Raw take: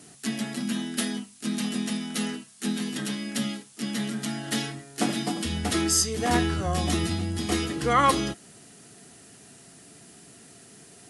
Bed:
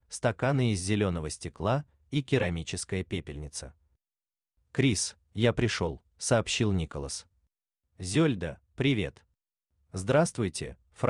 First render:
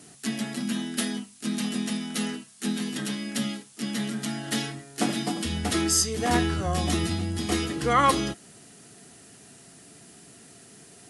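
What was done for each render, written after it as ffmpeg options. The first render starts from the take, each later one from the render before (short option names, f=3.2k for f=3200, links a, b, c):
-af anull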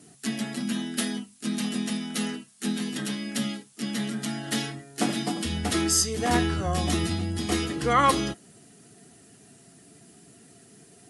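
-af "afftdn=nr=6:nf=-51"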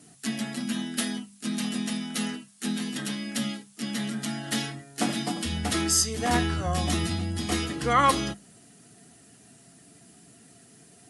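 -af "equalizer=f=390:w=2.9:g=-5.5,bandreject=f=50:t=h:w=6,bandreject=f=100:t=h:w=6,bandreject=f=150:t=h:w=6,bandreject=f=200:t=h:w=6"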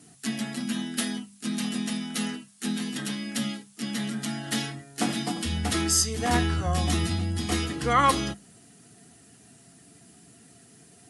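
-af "equalizer=f=81:w=1.5:g=3,bandreject=f=600:w=12"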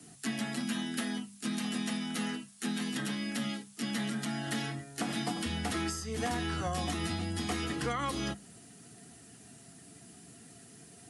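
-filter_complex "[0:a]alimiter=limit=-18dB:level=0:latency=1:release=182,acrossover=split=110|260|600|2400[a][b][c][d][e];[a]acompressor=threshold=-46dB:ratio=4[f];[b]acompressor=threshold=-39dB:ratio=4[g];[c]acompressor=threshold=-40dB:ratio=4[h];[d]acompressor=threshold=-36dB:ratio=4[i];[e]acompressor=threshold=-41dB:ratio=4[j];[f][g][h][i][j]amix=inputs=5:normalize=0"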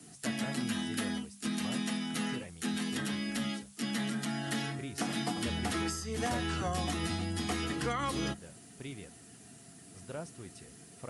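-filter_complex "[1:a]volume=-18dB[a];[0:a][a]amix=inputs=2:normalize=0"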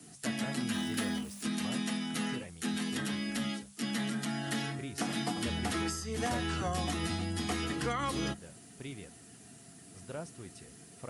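-filter_complex "[0:a]asettb=1/sr,asplit=3[a][b][c];[a]atrim=end=0.744[d];[b]atrim=start=0.74:end=1.43,asetpts=PTS-STARTPTS,afade=t=in:d=0.004:c=qsin,afade=t=out:st=0.686:d=0.004:c=qsin,aeval=exprs='val(0)+0.5*0.00596*sgn(val(0))':c=same[e];[c]atrim=start=1.426[f];[d][e]acrossfade=d=0.004:c1=hsin:c2=qsin[g];[g][f]acrossfade=d=0.004:c1=qsin:c2=hsin"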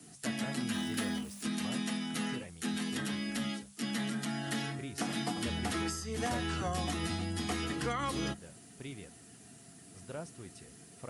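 -af "volume=-1dB"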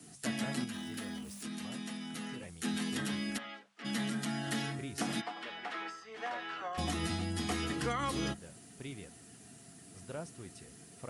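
-filter_complex "[0:a]asettb=1/sr,asplit=3[a][b][c];[a]atrim=end=0.644[d];[b]atrim=start=0.64:end=2.43,asetpts=PTS-STARTPTS,afade=t=in:d=0.004:c=qsin,afade=t=out:st=1.786:d=0.004:c=qsin,acompressor=threshold=-43dB:ratio=2:attack=3.2:release=140:knee=1:detection=peak[e];[c]atrim=start=2.426[f];[d][e]acrossfade=d=0.004:c1=hsin:c2=qsin[g];[g][f]acrossfade=d=0.004:c1=qsin:c2=hsin,asplit=3[h][i][j];[h]afade=t=out:st=3.37:d=0.02[k];[i]highpass=640,lowpass=2.2k,afade=t=in:st=3.37:d=0.02,afade=t=out:st=3.84:d=0.02[l];[j]afade=t=in:st=3.84:d=0.02[m];[k][l][m]amix=inputs=3:normalize=0,asplit=3[n][o][p];[n]afade=t=out:st=5.2:d=0.02[q];[o]highpass=690,lowpass=2.5k,afade=t=in:st=5.2:d=0.02,afade=t=out:st=6.77:d=0.02[r];[p]afade=t=in:st=6.77:d=0.02[s];[q][r][s]amix=inputs=3:normalize=0"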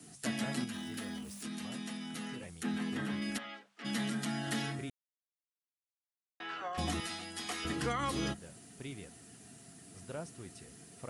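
-filter_complex "[0:a]asettb=1/sr,asplit=3[a][b][c];[a]atrim=end=2.634[d];[b]atrim=start=2.63:end=3.22,asetpts=PTS-STARTPTS,afade=t=in:d=0.004:c=qsin,afade=t=out:st=0.586:d=0.004:c=qsin,acrossover=split=2600[e][f];[f]acompressor=threshold=-53dB:ratio=4:attack=1:release=60[g];[e][g]amix=inputs=2:normalize=0[h];[c]atrim=start=3.216[i];[d][h]acrossfade=d=0.004:c1=hsin:c2=qsin[j];[j][i]acrossfade=d=0.004:c1=qsin:c2=hsin,asettb=1/sr,asplit=3[k][l][m];[k]atrim=end=7.004[n];[l]atrim=start=7:end=7.65,asetpts=PTS-STARTPTS,afade=t=in:d=0.004:c=qsin,afade=t=out:st=0.646:d=0.004:c=qsin,highpass=f=920:p=1[o];[m]atrim=start=7.646[p];[n][o]acrossfade=d=0.004:c1=hsin:c2=qsin[q];[q][p]acrossfade=d=0.004:c1=qsin:c2=hsin,asplit=3[r][s][t];[r]atrim=end=4.9,asetpts=PTS-STARTPTS,afade=t=out:st=4.896:d=0.004:c=hsin[u];[s]atrim=start=4.9:end=6.4,asetpts=PTS-STARTPTS,volume=0[v];[t]atrim=start=6.4,asetpts=PTS-STARTPTS,afade=t=in:d=0.004:c=hsin[w];[u][v][w]concat=n=3:v=0:a=1"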